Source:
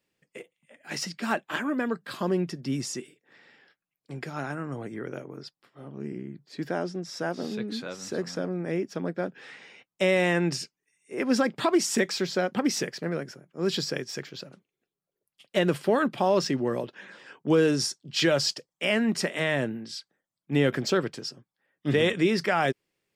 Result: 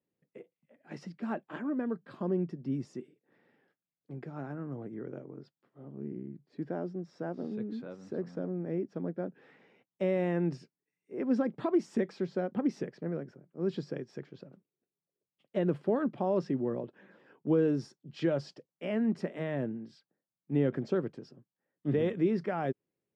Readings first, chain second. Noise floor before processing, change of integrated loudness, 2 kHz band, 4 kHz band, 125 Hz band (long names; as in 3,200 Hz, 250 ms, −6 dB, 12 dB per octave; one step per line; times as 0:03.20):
below −85 dBFS, −6.0 dB, −16.0 dB, −22.5 dB, −4.0 dB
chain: resonant band-pass 220 Hz, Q 0.5
level −3.5 dB